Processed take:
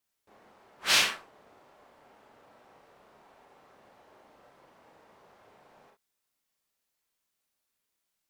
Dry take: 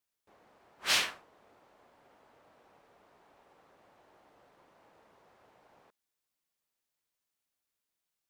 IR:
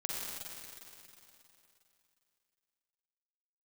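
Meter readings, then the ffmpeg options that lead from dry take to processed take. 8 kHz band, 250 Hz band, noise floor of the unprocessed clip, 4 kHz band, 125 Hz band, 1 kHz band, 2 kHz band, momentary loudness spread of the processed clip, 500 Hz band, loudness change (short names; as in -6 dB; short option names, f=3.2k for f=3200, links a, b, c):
+5.0 dB, +5.0 dB, under -85 dBFS, +5.0 dB, +5.5 dB, +4.5 dB, +5.0 dB, 16 LU, +4.5 dB, +4.0 dB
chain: -filter_complex "[1:a]atrim=start_sample=2205,afade=t=out:st=0.14:d=0.01,atrim=end_sample=6615,asetrate=61740,aresample=44100[a];[0:a][a]afir=irnorm=-1:irlink=0,volume=7.5dB"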